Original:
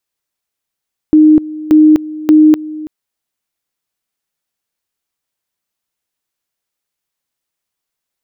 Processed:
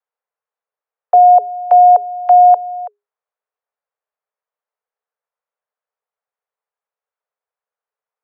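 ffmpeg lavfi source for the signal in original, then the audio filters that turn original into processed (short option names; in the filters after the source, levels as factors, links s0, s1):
-f lavfi -i "aevalsrc='pow(10,(-2.5-18.5*gte(mod(t,0.58),0.25))/20)*sin(2*PI*308*t)':d=1.74:s=44100"
-filter_complex "[0:a]lowpass=1000,acrossover=split=210|540[s0][s1][s2];[s2]acompressor=threshold=0.0158:ratio=6[s3];[s0][s1][s3]amix=inputs=3:normalize=0,afreqshift=410"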